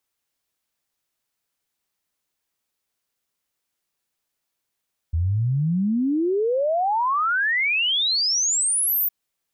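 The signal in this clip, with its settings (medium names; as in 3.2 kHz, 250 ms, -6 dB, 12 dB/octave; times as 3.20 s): log sweep 78 Hz -> 15 kHz 3.96 s -18.5 dBFS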